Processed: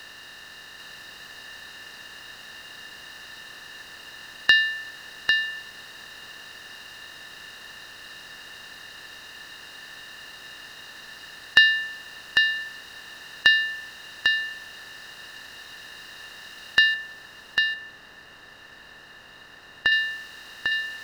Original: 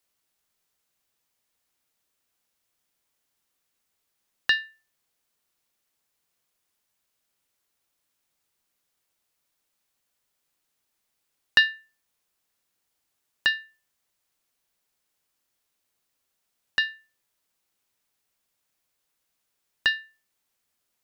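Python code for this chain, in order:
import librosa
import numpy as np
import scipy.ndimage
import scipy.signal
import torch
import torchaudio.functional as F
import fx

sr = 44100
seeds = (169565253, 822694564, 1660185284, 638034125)

y = fx.bin_compress(x, sr, power=0.4)
y = fx.high_shelf(y, sr, hz=2300.0, db=-11.0, at=(16.94, 19.92))
y = y + 10.0 ** (-4.5 / 20.0) * np.pad(y, (int(798 * sr / 1000.0), 0))[:len(y)]
y = y * 10.0 ** (1.5 / 20.0)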